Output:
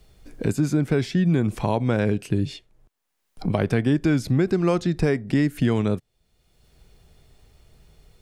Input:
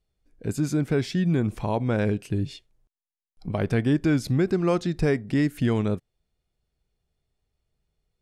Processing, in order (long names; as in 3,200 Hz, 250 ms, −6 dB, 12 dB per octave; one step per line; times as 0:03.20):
multiband upward and downward compressor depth 70%
level +2 dB